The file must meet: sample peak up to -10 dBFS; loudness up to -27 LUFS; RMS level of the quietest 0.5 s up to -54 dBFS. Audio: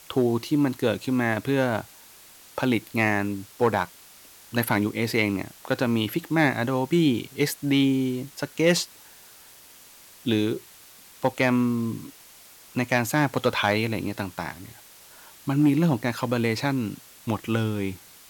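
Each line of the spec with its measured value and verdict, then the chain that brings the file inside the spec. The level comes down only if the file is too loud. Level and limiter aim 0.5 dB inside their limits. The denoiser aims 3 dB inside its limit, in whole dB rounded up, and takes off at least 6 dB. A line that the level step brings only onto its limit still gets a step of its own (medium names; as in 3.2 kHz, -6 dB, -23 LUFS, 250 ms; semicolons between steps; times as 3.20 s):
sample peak -8.5 dBFS: fail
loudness -25.0 LUFS: fail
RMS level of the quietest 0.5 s -50 dBFS: fail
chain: noise reduction 6 dB, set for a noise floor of -50 dBFS; trim -2.5 dB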